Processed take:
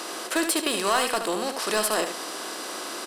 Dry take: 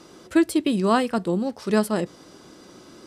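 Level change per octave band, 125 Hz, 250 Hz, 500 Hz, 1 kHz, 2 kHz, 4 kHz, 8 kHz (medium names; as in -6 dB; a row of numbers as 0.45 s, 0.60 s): -16.0 dB, -9.5 dB, -2.5 dB, +1.0 dB, +4.0 dB, +8.0 dB, +11.0 dB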